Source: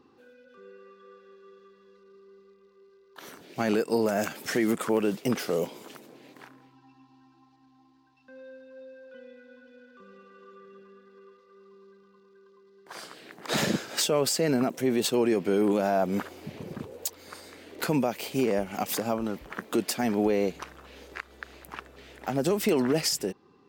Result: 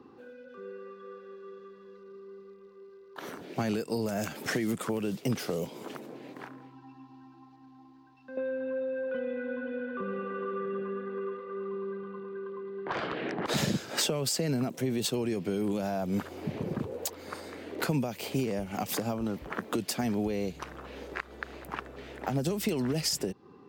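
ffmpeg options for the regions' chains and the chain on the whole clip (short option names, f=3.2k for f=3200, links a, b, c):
-filter_complex "[0:a]asettb=1/sr,asplit=3[a][b][c];[a]atrim=end=8.374[d];[b]atrim=start=8.37:end=13.46,asetpts=PTS-STARTPTS,afade=t=in:d=0.004:c=qsin,afade=t=out:st=5.086:d=0.004:c=qsin,lowpass=f=3k:w=0.5412,lowpass=f=3k:w=1.3066,aeval=exprs='0.0422*sin(PI/2*2.51*val(0)/0.0422)':c=same[e];[c]atrim=start=13.456[f];[d][e]acrossfade=d=0.004:c1=hsin:c2=qsin[g];[g][f]acrossfade=d=0.004:c1=qsin:c2=hsin,highpass=63,highshelf=f=2.3k:g=-10.5,acrossover=split=140|3000[h][i][j];[i]acompressor=threshold=-37dB:ratio=10[k];[h][k][j]amix=inputs=3:normalize=0,volume=7dB"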